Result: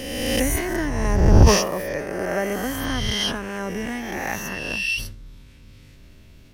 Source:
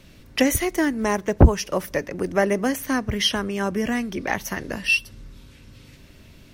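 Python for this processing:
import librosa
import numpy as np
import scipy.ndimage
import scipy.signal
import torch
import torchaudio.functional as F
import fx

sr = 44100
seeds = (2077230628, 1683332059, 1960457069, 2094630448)

y = fx.spec_swells(x, sr, rise_s=1.67)
y = fx.low_shelf(y, sr, hz=83.0, db=7.5)
y = fx.sustainer(y, sr, db_per_s=78.0)
y = y * 10.0 ** (-7.0 / 20.0)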